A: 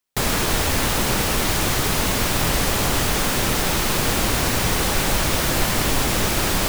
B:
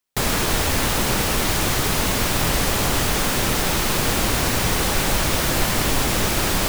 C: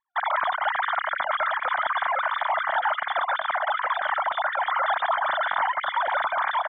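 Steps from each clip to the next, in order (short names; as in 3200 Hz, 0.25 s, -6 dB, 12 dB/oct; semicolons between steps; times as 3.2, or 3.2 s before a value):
nothing audible
sine-wave speech; fixed phaser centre 1100 Hz, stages 4; echo 1.16 s -15.5 dB; gain -2 dB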